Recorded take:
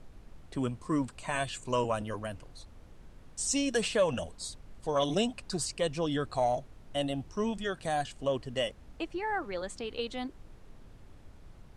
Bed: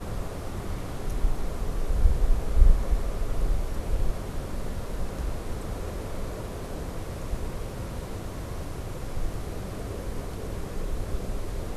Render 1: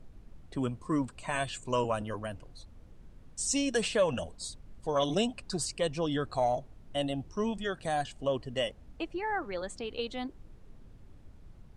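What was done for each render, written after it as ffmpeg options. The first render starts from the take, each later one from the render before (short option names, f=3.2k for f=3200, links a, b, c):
-af "afftdn=nr=6:nf=-54"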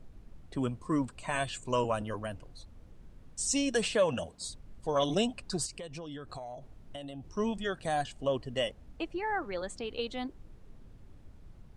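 -filter_complex "[0:a]asettb=1/sr,asplit=3[a][b][c];[a]atrim=end=3.954[d];[b]atrim=start=3.95:end=4.45,asetpts=PTS-STARTPTS,afade=t=in:d=0.004:c=qsin,afade=t=out:st=0.496:d=0.004:c=qsin,highpass=86[e];[c]atrim=start=4.446[f];[d][e]acrossfade=d=0.004:c1=hsin:c2=qsin[g];[g][f]acrossfade=d=0.004:c1=qsin:c2=hsin,asettb=1/sr,asplit=3[h][i][j];[h]atrim=end=5.664[k];[i]atrim=start=5.66:end=7.31,asetpts=PTS-STARTPTS,afade=t=in:d=0.004:c=qsin,afade=t=out:st=1.646:d=0.004:c=qsin,acompressor=threshold=-38dB:ratio=16:attack=3.2:release=140:knee=1:detection=peak[l];[j]atrim=start=7.306[m];[k][l]acrossfade=d=0.004:c1=hsin:c2=qsin[n];[n][m]acrossfade=d=0.004:c1=qsin:c2=hsin"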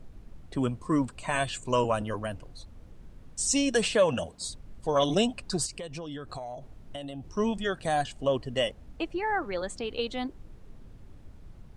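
-af "volume=4dB"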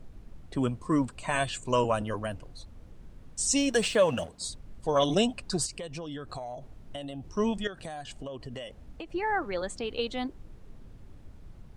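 -filter_complex "[0:a]asettb=1/sr,asplit=3[a][b][c];[a]atrim=end=3.584[d];[b]atrim=start=3.58:end=4.29,asetpts=PTS-STARTPTS,afade=t=in:d=0.004:c=qsin,afade=t=out:st=0.706:d=0.004:c=qsin,aeval=exprs='sgn(val(0))*max(abs(val(0))-0.00299,0)':c=same[e];[c]atrim=start=4.286[f];[d][e]acrossfade=d=0.004:c1=hsin:c2=qsin[g];[g][f]acrossfade=d=0.004:c1=qsin:c2=hsin,asettb=1/sr,asplit=3[h][i][j];[h]atrim=end=7.674[k];[i]atrim=start=7.67:end=9.14,asetpts=PTS-STARTPTS,afade=t=in:d=0.004:c=qsin,afade=t=out:st=1.466:d=0.004:c=qsin,acompressor=threshold=-35dB:ratio=10:attack=3.2:release=140:knee=1:detection=peak[l];[j]atrim=start=9.136[m];[k][l]acrossfade=d=0.004:c1=hsin:c2=qsin[n];[n][m]acrossfade=d=0.004:c1=qsin:c2=hsin"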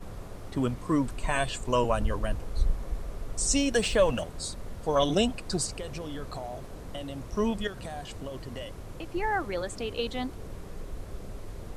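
-filter_complex "[1:a]volume=-8.5dB[a];[0:a][a]amix=inputs=2:normalize=0"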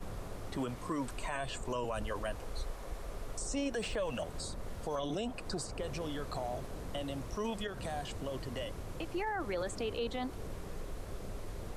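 -filter_complex "[0:a]acrossover=split=380|1700[a][b][c];[a]acompressor=threshold=-38dB:ratio=4[d];[b]acompressor=threshold=-31dB:ratio=4[e];[c]acompressor=threshold=-43dB:ratio=4[f];[d][e][f]amix=inputs=3:normalize=0,alimiter=level_in=3.5dB:limit=-24dB:level=0:latency=1:release=18,volume=-3.5dB"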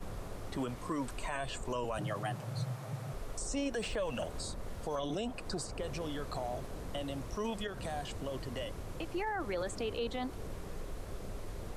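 -filter_complex "[0:a]asettb=1/sr,asplit=3[a][b][c];[a]atrim=end=1.984[d];[b]atrim=start=1.98:end=3.14,asetpts=PTS-STARTPTS,afade=t=in:d=0.004:c=qsin,afade=t=out:st=1.156:d=0.004:c=qsin,afreqshift=98[e];[c]atrim=start=3.136[f];[d][e]acrossfade=d=0.004:c1=hsin:c2=qsin[g];[g][f]acrossfade=d=0.004:c1=qsin:c2=hsin,asettb=1/sr,asplit=3[h][i][j];[h]atrim=end=4.124[k];[i]atrim=start=4.12:end=4.52,asetpts=PTS-STARTPTS,afade=t=in:d=0.004:c=qsin,afade=t=out:st=0.396:d=0.004:c=qsin,asplit=2[l][m];[m]adelay=47,volume=-8dB[n];[l][n]amix=inputs=2:normalize=0,atrim=end_sample=17640[o];[j]atrim=start=4.516[p];[k][o]acrossfade=d=0.004:c1=hsin:c2=qsin[q];[q][p]acrossfade=d=0.004:c1=qsin:c2=hsin"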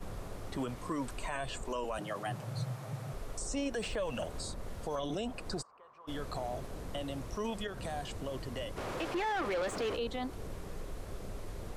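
-filter_complex "[0:a]asettb=1/sr,asplit=3[a][b][c];[a]atrim=end=1.654[d];[b]atrim=start=1.65:end=2.27,asetpts=PTS-STARTPTS,afade=t=in:d=0.004:c=qsin,afade=t=out:st=0.616:d=0.004:c=qsin,equalizer=f=120:t=o:w=0.59:g=-14.5[e];[c]atrim=start=2.266[f];[d][e]acrossfade=d=0.004:c1=hsin:c2=qsin[g];[g][f]acrossfade=d=0.004:c1=qsin:c2=hsin,asplit=3[h][i][j];[h]afade=t=out:st=5.61:d=0.02[k];[i]bandpass=f=1.1k:t=q:w=6.7,afade=t=in:st=5.61:d=0.02,afade=t=out:st=6.07:d=0.02[l];[j]afade=t=in:st=6.07:d=0.02[m];[k][l][m]amix=inputs=3:normalize=0,asplit=3[n][o][p];[n]afade=t=out:st=8.76:d=0.02[q];[o]asplit=2[r][s];[s]highpass=f=720:p=1,volume=23dB,asoftclip=type=tanh:threshold=-27dB[t];[r][t]amix=inputs=2:normalize=0,lowpass=f=2.3k:p=1,volume=-6dB,afade=t=in:st=8.76:d=0.02,afade=t=out:st=9.95:d=0.02[u];[p]afade=t=in:st=9.95:d=0.02[v];[q][u][v]amix=inputs=3:normalize=0"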